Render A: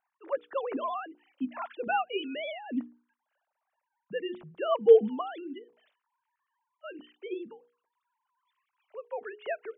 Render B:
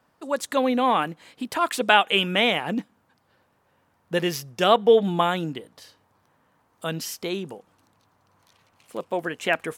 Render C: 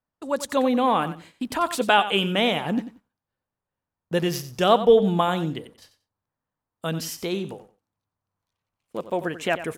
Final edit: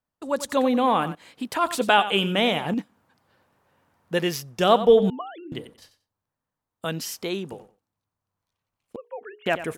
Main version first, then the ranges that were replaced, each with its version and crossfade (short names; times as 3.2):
C
1.15–1.64 from B
2.74–4.59 from B
5.1–5.52 from A
6.85–7.52 from B
8.96–9.46 from A